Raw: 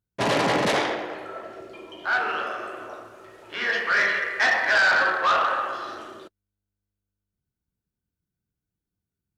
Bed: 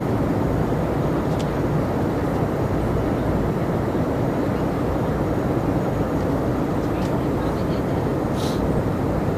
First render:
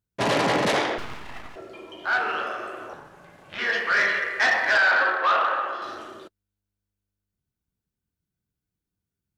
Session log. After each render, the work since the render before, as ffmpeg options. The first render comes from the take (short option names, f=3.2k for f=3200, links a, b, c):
-filter_complex "[0:a]asettb=1/sr,asplit=3[a][b][c];[a]atrim=end=0.984[d];[b]atrim=start=0.98:end=1.56,asetpts=PTS-STARTPTS,afade=t=in:d=0.004:c=qsin,afade=t=out:st=0.576:d=0.004:c=qsin,aeval=exprs='abs(val(0))':c=same[e];[c]atrim=start=1.556[f];[d][e]acrossfade=d=0.004:c1=hsin:c2=qsin[g];[g][f]acrossfade=d=0.004:c1=qsin:c2=hsin,asettb=1/sr,asplit=3[h][i][j];[h]atrim=end=2.934[k];[i]atrim=start=2.93:end=3.59,asetpts=PTS-STARTPTS,afade=t=in:d=0.004:c=qsin,afade=t=out:st=0.656:d=0.004:c=qsin,aeval=exprs='val(0)*sin(2*PI*210*n/s)':c=same[l];[j]atrim=start=3.586[m];[k][l]acrossfade=d=0.004:c1=hsin:c2=qsin[n];[n][m]acrossfade=d=0.004:c1=qsin:c2=hsin,asettb=1/sr,asplit=3[o][p][q];[o]atrim=end=4.774[r];[p]atrim=start=4.77:end=5.82,asetpts=PTS-STARTPTS,afade=t=in:d=0.004:c=qsin,afade=t=out:st=1.046:d=0.004:c=qsin,acrossover=split=230 4300:gain=0.0891 1 0.251[s][t][u];[s][t][u]amix=inputs=3:normalize=0[v];[q]atrim=start=5.816[w];[r][v]acrossfade=d=0.004:c1=hsin:c2=qsin[x];[x][w]acrossfade=d=0.004:c1=qsin:c2=hsin"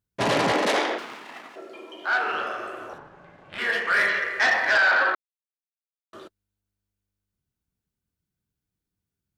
-filter_complex "[0:a]asettb=1/sr,asplit=3[a][b][c];[a]atrim=end=0.524[d];[b]atrim=start=0.52:end=2.31,asetpts=PTS-STARTPTS,afade=t=in:d=0.004:c=qsin,afade=t=out:st=1.786:d=0.004:c=qsin,highpass=f=230:w=0.5412,highpass=f=230:w=1.3066[e];[c]atrim=start=2.306[f];[d][e]acrossfade=d=0.004:c1=hsin:c2=qsin[g];[g][f]acrossfade=d=0.004:c1=qsin:c2=hsin,asettb=1/sr,asplit=3[h][i][j];[h]atrim=end=2.984[k];[i]atrim=start=2.98:end=4.09,asetpts=PTS-STARTPTS,afade=t=in:d=0.004:c=qsin,afade=t=out:st=1.106:d=0.004:c=qsin,adynamicsmooth=sensitivity=4:basefreq=3.9k[l];[j]atrim=start=4.086[m];[k][l]acrossfade=d=0.004:c1=hsin:c2=qsin[n];[n][m]acrossfade=d=0.004:c1=qsin:c2=hsin,asplit=3[o][p][q];[o]atrim=end=5.15,asetpts=PTS-STARTPTS,afade=t=out:st=5.146:d=0.004:c=hsin[r];[p]atrim=start=5.15:end=6.13,asetpts=PTS-STARTPTS,volume=0[s];[q]atrim=start=6.13,asetpts=PTS-STARTPTS,afade=t=in:d=0.004:c=hsin[t];[r][s][t]concat=n=3:v=0:a=1"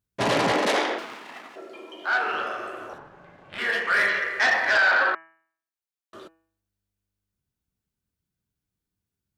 -af "bandreject=f=163.1:t=h:w=4,bandreject=f=326.2:t=h:w=4,bandreject=f=489.3:t=h:w=4,bandreject=f=652.4:t=h:w=4,bandreject=f=815.5:t=h:w=4,bandreject=f=978.6:t=h:w=4,bandreject=f=1.1417k:t=h:w=4,bandreject=f=1.3048k:t=h:w=4,bandreject=f=1.4679k:t=h:w=4,bandreject=f=1.631k:t=h:w=4,bandreject=f=1.7941k:t=h:w=4,bandreject=f=1.9572k:t=h:w=4,bandreject=f=2.1203k:t=h:w=4,bandreject=f=2.2834k:t=h:w=4,bandreject=f=2.4465k:t=h:w=4,bandreject=f=2.6096k:t=h:w=4,bandreject=f=2.7727k:t=h:w=4,bandreject=f=2.9358k:t=h:w=4"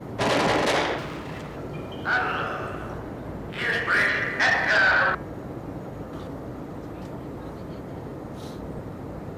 -filter_complex "[1:a]volume=-14dB[a];[0:a][a]amix=inputs=2:normalize=0"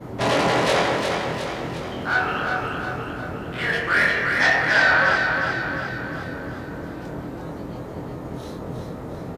-filter_complex "[0:a]asplit=2[a][b];[b]adelay=24,volume=-3.5dB[c];[a][c]amix=inputs=2:normalize=0,aecho=1:1:357|714|1071|1428|1785|2142|2499:0.562|0.304|0.164|0.0885|0.0478|0.0258|0.0139"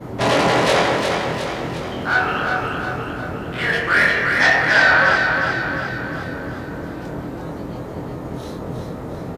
-af "volume=3.5dB"